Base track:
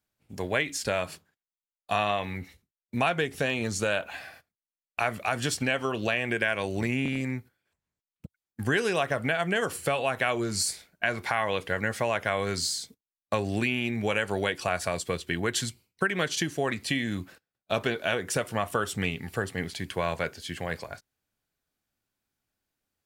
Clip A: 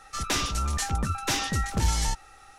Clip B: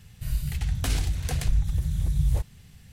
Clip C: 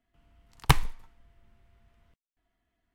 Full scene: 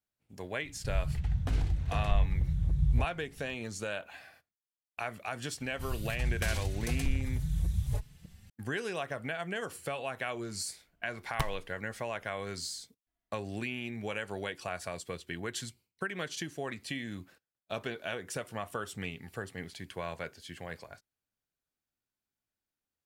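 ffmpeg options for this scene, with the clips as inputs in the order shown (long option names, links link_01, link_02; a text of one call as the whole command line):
ffmpeg -i bed.wav -i cue0.wav -i cue1.wav -i cue2.wav -filter_complex "[2:a]asplit=2[link_01][link_02];[0:a]volume=-9.5dB[link_03];[link_01]lowpass=frequency=1100:poles=1[link_04];[link_02]asplit=2[link_05][link_06];[link_06]adelay=4.2,afreqshift=1.6[link_07];[link_05][link_07]amix=inputs=2:normalize=1[link_08];[link_04]atrim=end=2.92,asetpts=PTS-STARTPTS,volume=-3.5dB,afade=type=in:duration=0.004:curve=hsin,afade=type=out:start_time=2.916:duration=0.004:curve=hsin,adelay=630[link_09];[link_08]atrim=end=2.92,asetpts=PTS-STARTPTS,volume=-2.5dB,afade=type=in:duration=0.004:curve=hsin,afade=type=out:start_time=2.916:duration=0.004:curve=hsin,adelay=5580[link_10];[3:a]atrim=end=2.94,asetpts=PTS-STARTPTS,volume=-12.5dB,afade=type=in:duration=0.004:curve=hsin,afade=type=out:start_time=2.936:duration=0.004:curve=hsin,adelay=10700[link_11];[link_03][link_09][link_10][link_11]amix=inputs=4:normalize=0" out.wav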